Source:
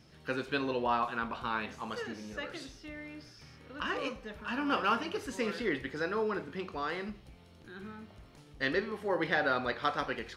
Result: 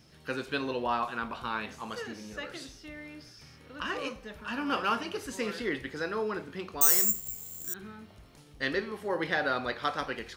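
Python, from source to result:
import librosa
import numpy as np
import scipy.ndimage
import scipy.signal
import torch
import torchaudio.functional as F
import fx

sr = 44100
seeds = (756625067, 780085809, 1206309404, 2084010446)

y = fx.resample_bad(x, sr, factor=6, down='none', up='zero_stuff', at=(6.81, 7.74))
y = fx.high_shelf(y, sr, hz=6100.0, db=8.0)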